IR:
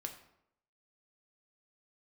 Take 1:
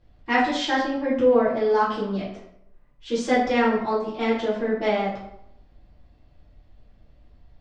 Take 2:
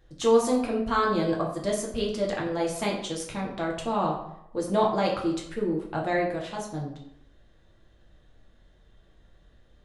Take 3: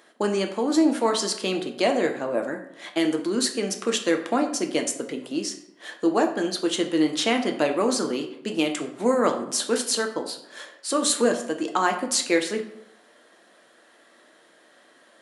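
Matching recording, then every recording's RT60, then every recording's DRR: 3; 0.75, 0.75, 0.75 s; -9.5, -2.5, 3.5 dB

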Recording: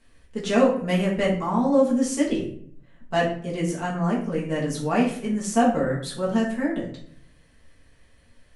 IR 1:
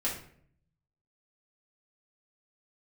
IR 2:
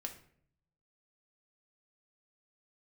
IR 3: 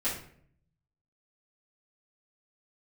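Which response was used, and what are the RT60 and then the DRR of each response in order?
1; 0.60, 0.60, 0.60 s; -6.5, 3.0, -12.0 dB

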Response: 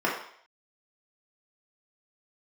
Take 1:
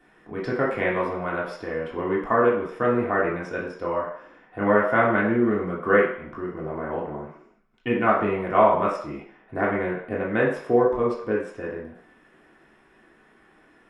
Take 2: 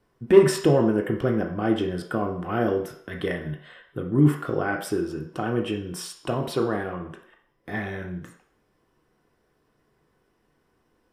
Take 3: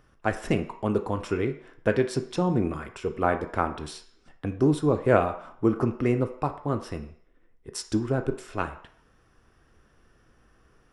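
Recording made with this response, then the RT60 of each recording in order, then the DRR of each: 1; 0.60, 0.60, 0.60 s; -5.0, 1.0, 6.5 dB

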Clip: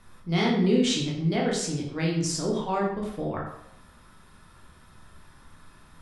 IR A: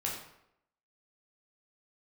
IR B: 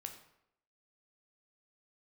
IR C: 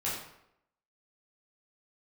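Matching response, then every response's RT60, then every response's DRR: A; 0.80, 0.80, 0.80 s; -3.5, 4.5, -8.0 dB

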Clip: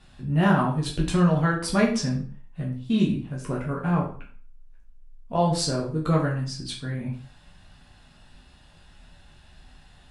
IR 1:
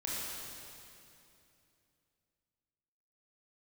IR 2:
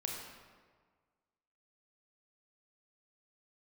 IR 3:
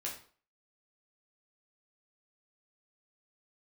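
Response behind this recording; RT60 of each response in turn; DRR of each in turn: 3; 2.7, 1.6, 0.45 s; -6.5, -0.5, -3.5 dB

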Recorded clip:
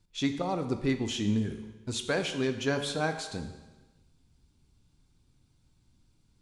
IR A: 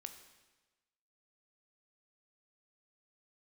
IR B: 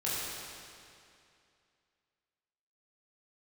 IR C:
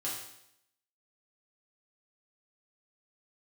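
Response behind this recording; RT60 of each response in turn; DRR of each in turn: A; 1.2, 2.5, 0.75 s; 6.5, -9.0, -7.0 dB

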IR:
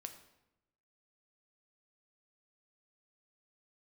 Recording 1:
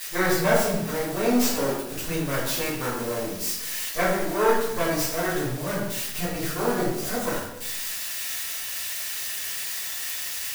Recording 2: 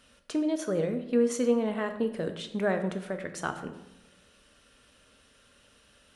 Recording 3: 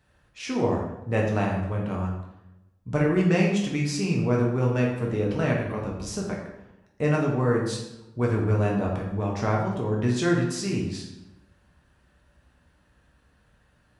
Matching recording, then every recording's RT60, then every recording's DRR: 2; 0.90, 0.90, 0.90 s; -10.0, 6.5, -2.5 dB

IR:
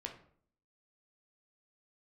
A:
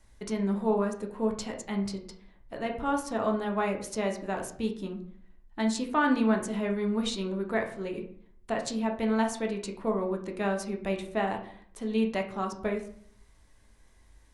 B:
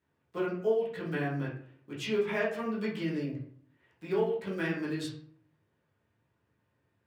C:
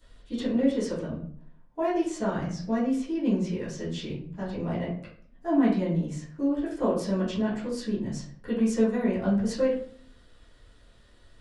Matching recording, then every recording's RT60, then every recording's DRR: A; 0.55, 0.55, 0.55 s; 1.5, -8.0, -13.0 dB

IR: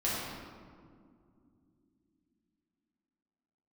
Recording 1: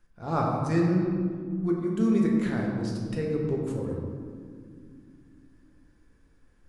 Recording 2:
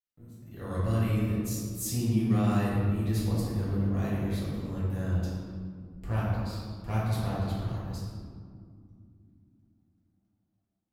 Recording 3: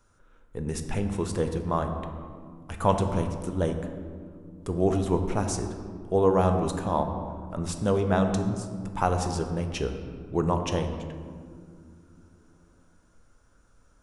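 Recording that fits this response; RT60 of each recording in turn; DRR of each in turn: 2; 2.4 s, 2.4 s, not exponential; -2.0, -8.5, 5.5 dB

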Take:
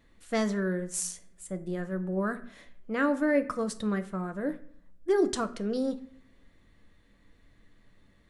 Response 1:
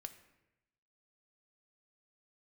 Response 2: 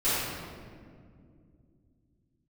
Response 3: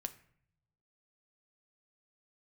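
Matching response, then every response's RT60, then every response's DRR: 3; 0.95, 2.2, 0.60 s; 8.0, -15.5, 9.0 dB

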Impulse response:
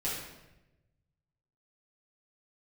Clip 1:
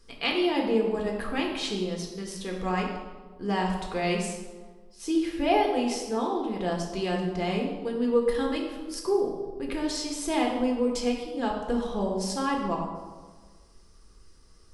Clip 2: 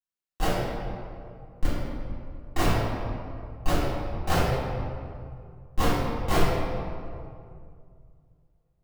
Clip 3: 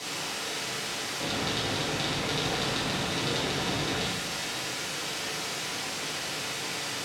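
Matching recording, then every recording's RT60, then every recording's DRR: 3; 1.5, 2.3, 1.0 s; -0.5, -13.5, -9.0 dB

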